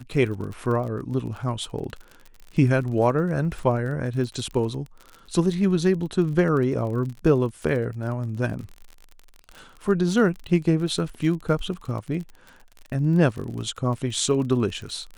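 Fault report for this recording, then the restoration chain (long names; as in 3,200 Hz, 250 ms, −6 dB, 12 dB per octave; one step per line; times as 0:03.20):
surface crackle 41 per second −32 dBFS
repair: click removal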